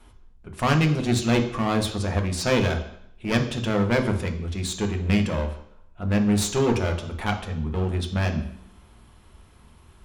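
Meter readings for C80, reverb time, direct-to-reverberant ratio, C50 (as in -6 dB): 13.0 dB, 0.70 s, 4.0 dB, 10.0 dB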